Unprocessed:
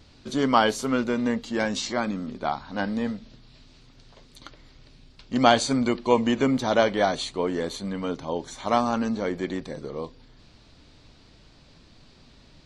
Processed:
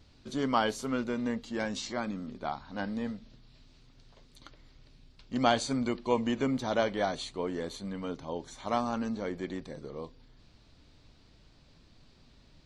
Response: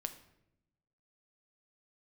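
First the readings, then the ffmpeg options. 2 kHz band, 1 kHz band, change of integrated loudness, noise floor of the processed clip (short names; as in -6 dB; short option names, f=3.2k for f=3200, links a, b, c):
-8.0 dB, -8.0 dB, -7.5 dB, -60 dBFS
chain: -af "lowshelf=f=130:g=4,volume=-8dB"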